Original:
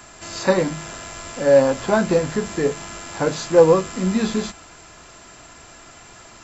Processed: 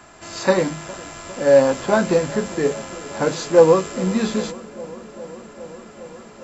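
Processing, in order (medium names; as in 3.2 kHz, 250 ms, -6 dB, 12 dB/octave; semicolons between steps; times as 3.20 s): bass shelf 99 Hz -7.5 dB; on a send: bucket-brigade echo 406 ms, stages 4096, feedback 83%, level -20 dB; on the sum: tape noise reduction on one side only decoder only; trim +1 dB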